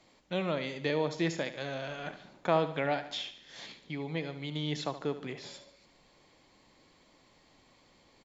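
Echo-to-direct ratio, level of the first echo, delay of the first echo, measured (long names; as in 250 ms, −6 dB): −11.0 dB, −12.5 dB, 73 ms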